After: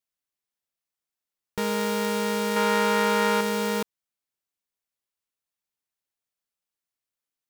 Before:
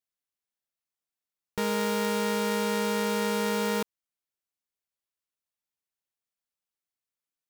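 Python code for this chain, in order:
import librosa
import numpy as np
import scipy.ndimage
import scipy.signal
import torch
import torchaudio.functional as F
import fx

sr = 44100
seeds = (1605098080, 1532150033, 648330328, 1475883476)

y = fx.peak_eq(x, sr, hz=1300.0, db=8.0, octaves=2.5, at=(2.56, 3.41))
y = F.gain(torch.from_numpy(y), 1.5).numpy()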